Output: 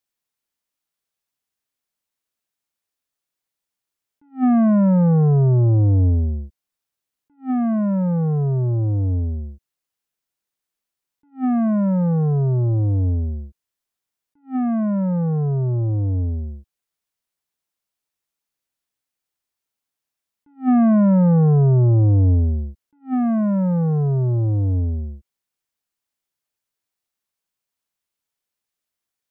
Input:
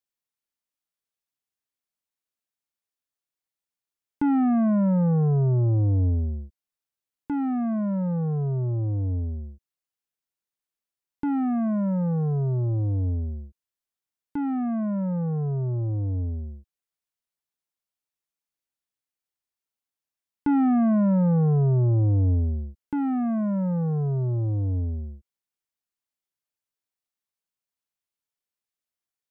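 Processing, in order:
level that may rise only so fast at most 300 dB per second
level +6 dB

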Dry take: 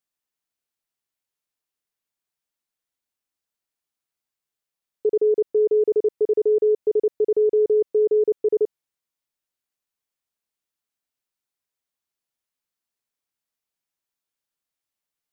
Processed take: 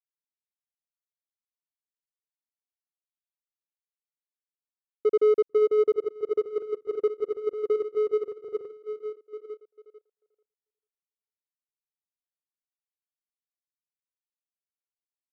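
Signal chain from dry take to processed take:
echo through a band-pass that steps 444 ms, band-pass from 190 Hz, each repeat 0.7 octaves, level −3 dB
power curve on the samples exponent 1.4
expander for the loud parts 2.5 to 1, over −32 dBFS

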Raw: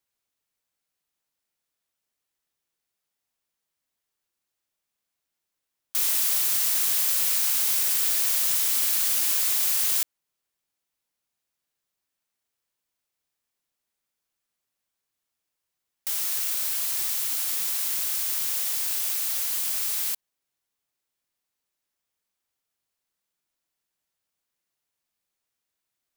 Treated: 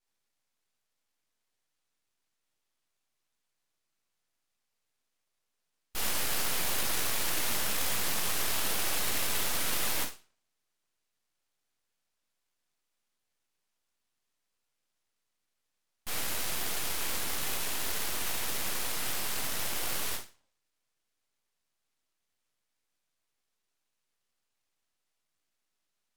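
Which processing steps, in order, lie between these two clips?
in parallel at −1.5 dB: brickwall limiter −18.5 dBFS, peak gain reduction 8 dB
on the sum: linear-phase brick-wall band-pass 240–9,000 Hz
rectangular room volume 400 cubic metres, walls furnished, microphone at 6.8 metres
full-wave rectification
level −9 dB

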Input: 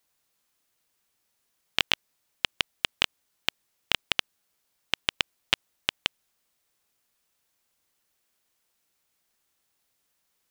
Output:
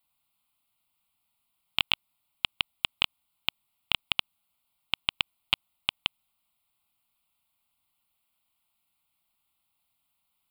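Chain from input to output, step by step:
phaser with its sweep stopped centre 1,700 Hz, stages 6

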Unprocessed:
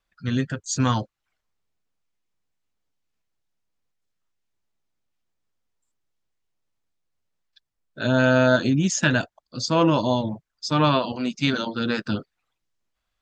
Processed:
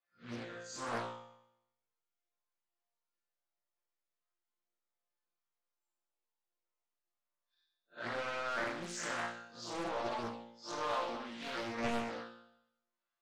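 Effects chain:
spectrum smeared in time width 100 ms
high-shelf EQ 2,400 Hz −7 dB
mid-hump overdrive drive 22 dB, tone 1,400 Hz, clips at −7 dBFS
bass and treble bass −11 dB, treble +9 dB
resonators tuned to a chord A#2 fifth, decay 0.8 s
highs frequency-modulated by the lows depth 0.92 ms
level +1 dB

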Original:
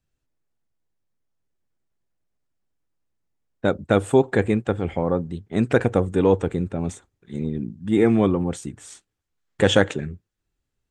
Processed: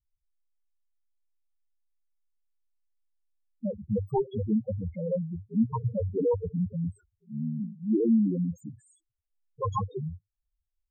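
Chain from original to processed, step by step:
phase distortion by the signal itself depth 0.94 ms
spectral peaks only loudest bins 2

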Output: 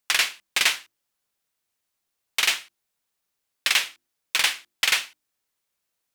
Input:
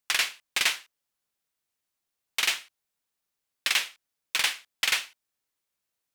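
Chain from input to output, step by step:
mains-hum notches 50/100/150/200/250/300/350 Hz
level +4 dB

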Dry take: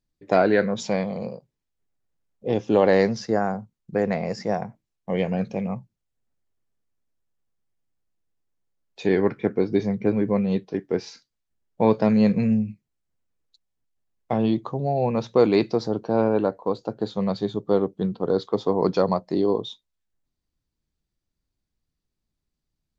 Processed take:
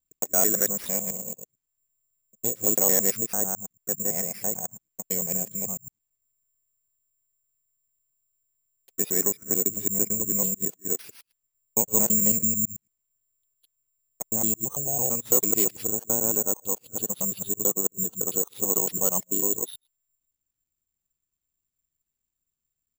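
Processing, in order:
reversed piece by piece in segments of 111 ms
pitch-shifted copies added −4 semitones −15 dB
bad sample-rate conversion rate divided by 6×, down none, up zero stuff
level −11 dB

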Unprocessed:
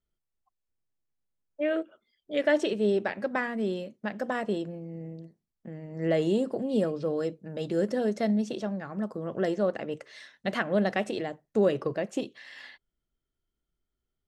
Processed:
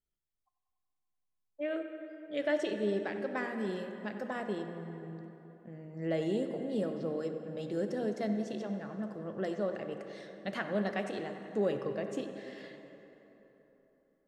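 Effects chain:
0:03.37–0:04.18: bass and treble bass +3 dB, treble +5 dB
bucket-brigade delay 95 ms, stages 2,048, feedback 76%, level −13.5 dB
dense smooth reverb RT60 3.8 s, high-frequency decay 0.55×, DRR 8 dB
level −7.5 dB

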